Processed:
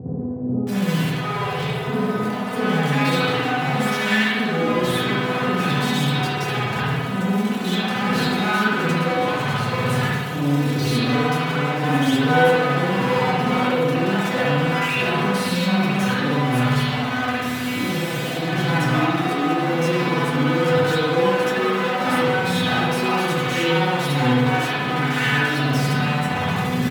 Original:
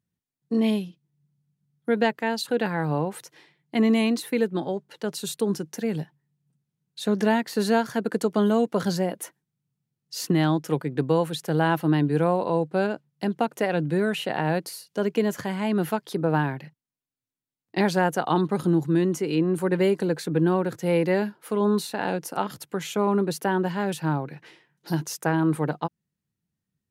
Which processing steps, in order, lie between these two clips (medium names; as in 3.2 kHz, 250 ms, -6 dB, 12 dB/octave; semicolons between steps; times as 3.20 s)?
one-bit comparator; high-pass 110 Hz 24 dB/octave; treble shelf 5.7 kHz -10.5 dB; harmonic-percussive split harmonic +5 dB; bass shelf 300 Hz -2.5 dB; pitch shift -1.5 st; feedback comb 250 Hz, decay 0.22 s, harmonics all, mix 90%; bands offset in time lows, highs 670 ms, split 560 Hz; spring tank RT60 1.2 s, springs 56 ms, chirp 20 ms, DRR -9.5 dB; trim +7.5 dB